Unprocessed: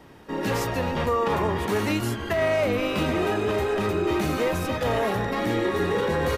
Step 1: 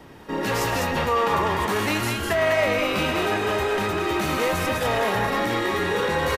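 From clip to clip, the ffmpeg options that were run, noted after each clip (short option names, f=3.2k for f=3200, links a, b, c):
-filter_complex "[0:a]acrossover=split=660[a][b];[a]alimiter=level_in=1dB:limit=-24dB:level=0:latency=1,volume=-1dB[c];[b]aecho=1:1:107.9|201.2:0.282|0.708[d];[c][d]amix=inputs=2:normalize=0,volume=3.5dB"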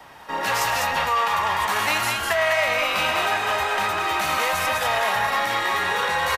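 -filter_complex "[0:a]lowshelf=f=530:t=q:w=1.5:g=-11.5,acrossover=split=150|1500|2200[a][b][c][d];[b]alimiter=limit=-20dB:level=0:latency=1:release=331[e];[a][e][c][d]amix=inputs=4:normalize=0,volume=3.5dB"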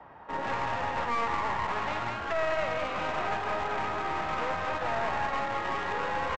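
-af "lowpass=1.3k,aresample=16000,aeval=exprs='clip(val(0),-1,0.0237)':c=same,aresample=44100,volume=-3dB"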